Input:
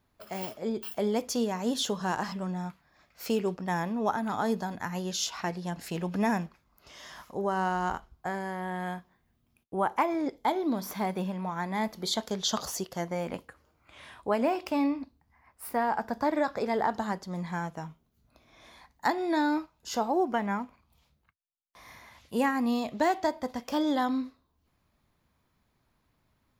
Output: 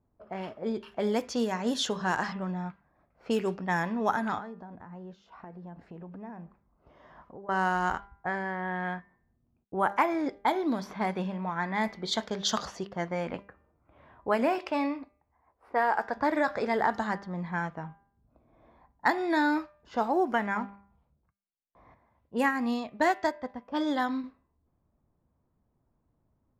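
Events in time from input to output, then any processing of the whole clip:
0:04.38–0:07.49: downward compressor 4 to 1, threshold −42 dBFS
0:14.58–0:16.15: low shelf with overshoot 290 Hz −7 dB, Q 1.5
0:21.94–0:24.24: expander for the loud parts, over −40 dBFS
whole clip: low-pass that shuts in the quiet parts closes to 720 Hz, open at −24 dBFS; dynamic equaliser 1,700 Hz, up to +6 dB, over −46 dBFS, Q 1.4; hum removal 199.5 Hz, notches 14

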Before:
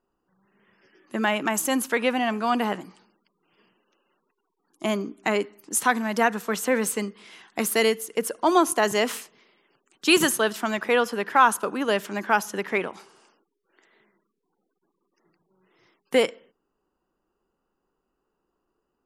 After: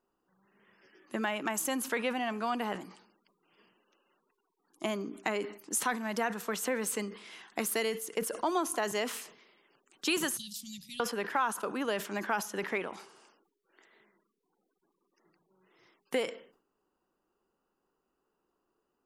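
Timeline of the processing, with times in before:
0:10.37–0:11.00: elliptic band-stop filter 160–4,100 Hz, stop band 50 dB
whole clip: downward compressor 2.5 to 1, threshold −29 dBFS; low-shelf EQ 130 Hz −8 dB; level that may fall only so fast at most 120 dB per second; level −2 dB

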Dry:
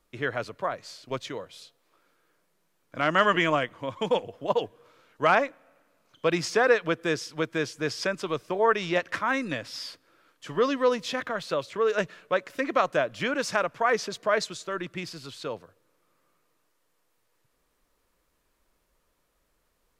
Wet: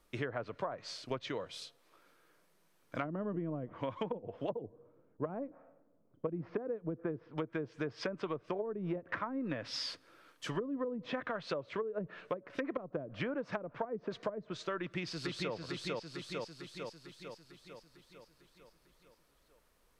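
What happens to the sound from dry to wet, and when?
0:04.62–0:07.38: low-pass that shuts in the quiet parts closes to 370 Hz, open at −16.5 dBFS
0:14.79–0:15.54: delay throw 450 ms, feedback 60%, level −2.5 dB
whole clip: notch filter 7,100 Hz, Q 16; treble cut that deepens with the level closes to 300 Hz, closed at −21 dBFS; downward compressor, threshold −35 dBFS; level +1 dB

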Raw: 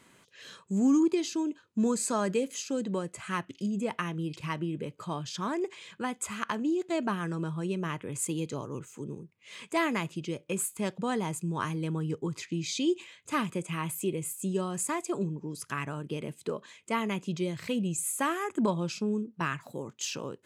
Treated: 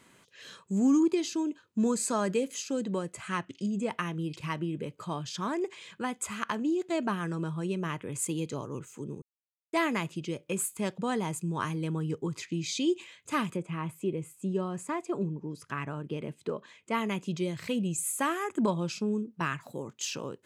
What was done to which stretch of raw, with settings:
0:03.28–0:03.90: Butterworth low-pass 9,700 Hz 72 dB per octave
0:09.22–0:09.73: silence
0:13.55–0:16.93: low-pass filter 1,200 Hz → 3,300 Hz 6 dB per octave

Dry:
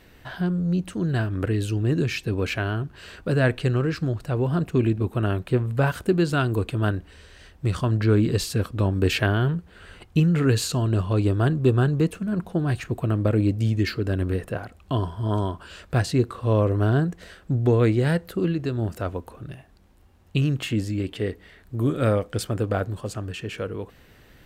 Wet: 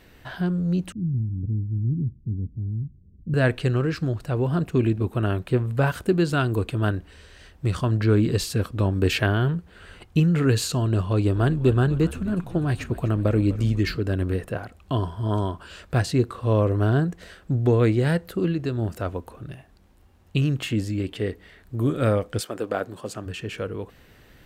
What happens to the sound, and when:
0:00.92–0:03.34: inverse Chebyshev low-pass filter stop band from 1,300 Hz, stop band 80 dB
0:11.06–0:13.97: echo with shifted repeats 249 ms, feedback 56%, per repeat −67 Hz, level −16 dB
0:22.40–0:23.25: high-pass filter 390 Hz → 150 Hz

